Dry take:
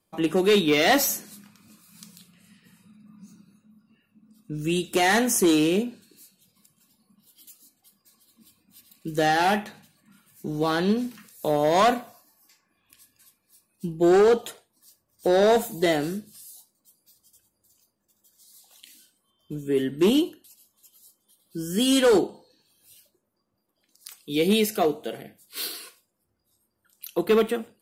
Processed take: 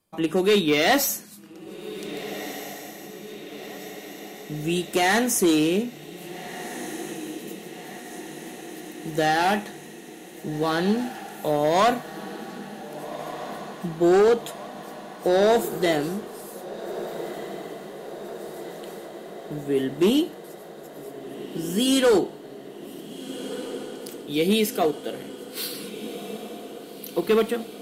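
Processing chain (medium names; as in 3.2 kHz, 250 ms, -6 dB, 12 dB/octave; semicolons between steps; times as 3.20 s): on a send: echo that smears into a reverb 1614 ms, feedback 69%, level -13 dB; on the sum: endings held to a fixed fall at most 450 dB/s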